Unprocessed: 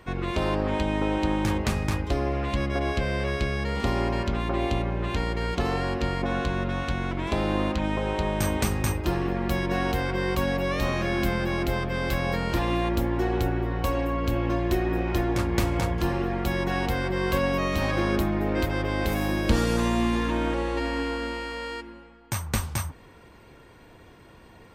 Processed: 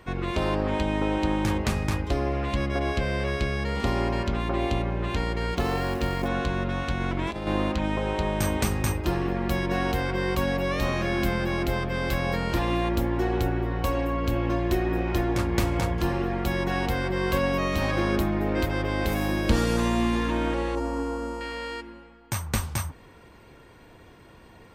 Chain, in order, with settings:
0:05.57–0:06.28: log-companded quantiser 6 bits
0:07.00–0:07.47: compressor whose output falls as the input rises −28 dBFS, ratio −0.5
0:20.75–0:21.41: flat-topped bell 2,700 Hz −13.5 dB

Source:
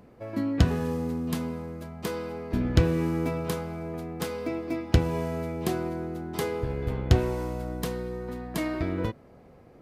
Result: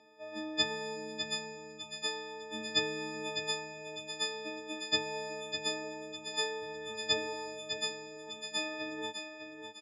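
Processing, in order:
every partial snapped to a pitch grid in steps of 6 semitones
loudspeaker in its box 460–6,200 Hz, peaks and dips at 550 Hz −5 dB, 1,300 Hz −10 dB, 3,700 Hz +4 dB
repeating echo 603 ms, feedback 36%, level −7.5 dB
level −5 dB

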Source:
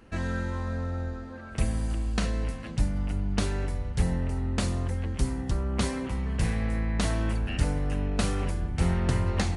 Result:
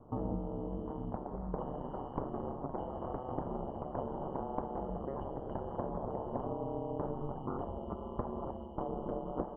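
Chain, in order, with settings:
band-splitting scrambler in four parts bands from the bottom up 2413
delay with pitch and tempo change per echo 85 ms, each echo +7 semitones, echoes 3
ring modulation 68 Hz
Butterworth low-pass 960 Hz 36 dB per octave
downward compressor 3 to 1, threshold −50 dBFS, peak gain reduction 11 dB
level +15 dB

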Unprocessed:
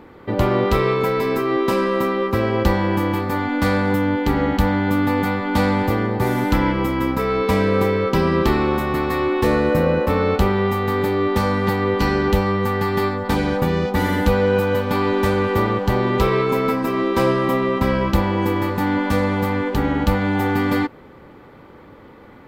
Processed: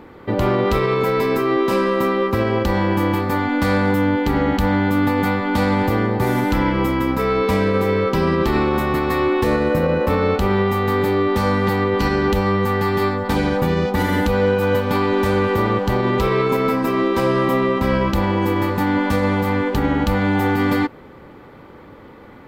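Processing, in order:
brickwall limiter −11 dBFS, peak gain reduction 8 dB
level +2 dB

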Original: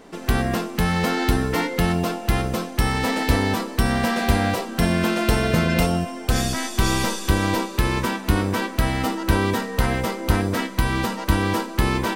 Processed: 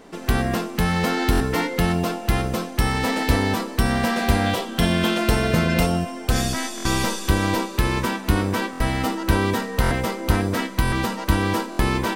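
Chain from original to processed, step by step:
0:04.46–0:05.18: parametric band 3,300 Hz +10 dB 0.27 octaves
buffer that repeats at 0:01.31/0:06.76/0:08.71/0:09.82/0:10.83/0:11.70, samples 1,024, times 3

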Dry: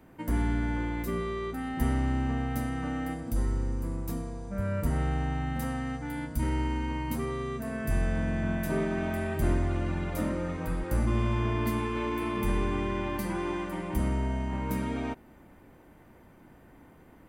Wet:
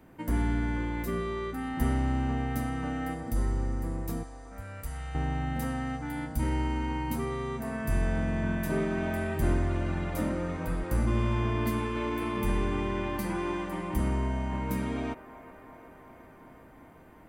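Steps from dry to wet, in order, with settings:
0:04.23–0:05.15: guitar amp tone stack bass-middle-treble 10-0-10
delay with a band-pass on its return 372 ms, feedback 78%, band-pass 900 Hz, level −13 dB

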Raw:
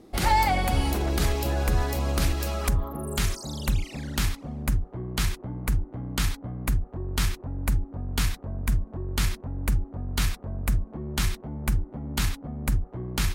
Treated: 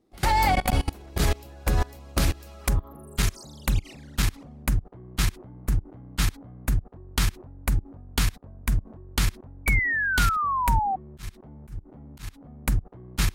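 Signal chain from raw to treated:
output level in coarse steps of 24 dB
0:09.66–0:10.96: sound drawn into the spectrogram fall 750–2,300 Hz −29 dBFS
0:10.98–0:12.65: volume swells 331 ms
level +4 dB

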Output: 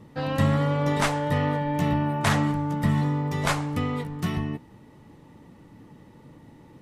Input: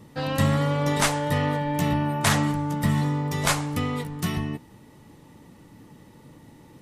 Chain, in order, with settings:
high-shelf EQ 4,200 Hz −10.5 dB

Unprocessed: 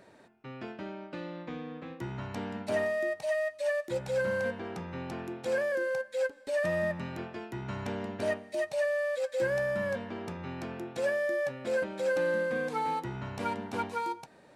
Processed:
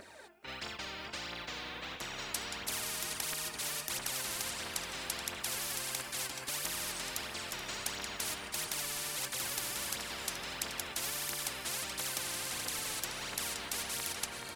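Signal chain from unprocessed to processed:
sub-octave generator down 2 octaves, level +3 dB
high-pass filter 270 Hz 6 dB per octave
noise gate −45 dBFS, range −10 dB
spectral tilt +2.5 dB per octave
phase shifter 1.5 Hz, delay 3.2 ms, feedback 60%
on a send: repeating echo 428 ms, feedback 52%, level −15 dB
on the sum: every bin compressed towards the loudest bin 10 to 1
level +2 dB

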